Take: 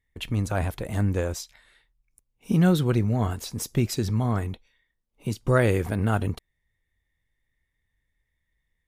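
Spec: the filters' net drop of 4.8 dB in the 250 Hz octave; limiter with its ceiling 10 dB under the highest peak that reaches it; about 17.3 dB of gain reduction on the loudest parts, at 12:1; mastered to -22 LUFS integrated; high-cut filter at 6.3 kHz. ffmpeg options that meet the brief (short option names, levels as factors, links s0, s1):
-af "lowpass=6300,equalizer=f=250:t=o:g=-7.5,acompressor=threshold=0.0158:ratio=12,volume=15.8,alimiter=limit=0.266:level=0:latency=1"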